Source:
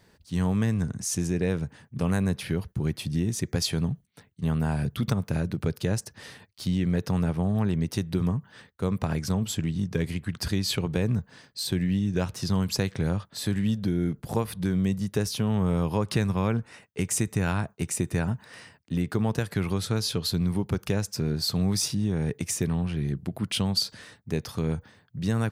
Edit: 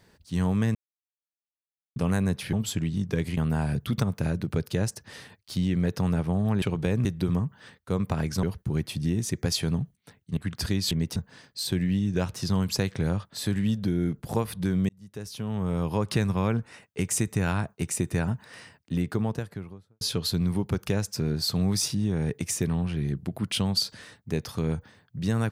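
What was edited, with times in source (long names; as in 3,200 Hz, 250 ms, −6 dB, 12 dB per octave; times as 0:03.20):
0:00.75–0:01.96: silence
0:02.53–0:04.47: swap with 0:09.35–0:10.19
0:07.72–0:07.97: swap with 0:10.73–0:11.16
0:14.89–0:16.05: fade in
0:18.94–0:20.01: fade out and dull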